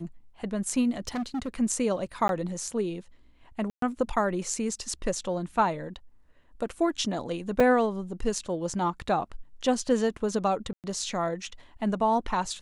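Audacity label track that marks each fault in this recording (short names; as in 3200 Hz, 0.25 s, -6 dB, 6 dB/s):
1.070000	1.480000	clipped -27.5 dBFS
2.280000	2.290000	gap 12 ms
3.700000	3.820000	gap 0.123 s
7.600000	7.600000	gap 3.3 ms
10.730000	10.840000	gap 0.108 s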